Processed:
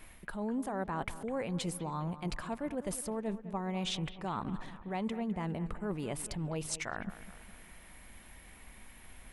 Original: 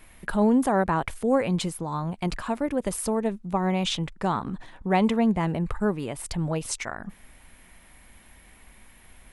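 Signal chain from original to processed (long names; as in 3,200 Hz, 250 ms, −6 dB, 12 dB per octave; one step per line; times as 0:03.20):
reversed playback
downward compressor 6 to 1, threshold −32 dBFS, peak gain reduction 15 dB
reversed playback
bucket-brigade delay 205 ms, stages 4,096, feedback 53%, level −14 dB
level −1.5 dB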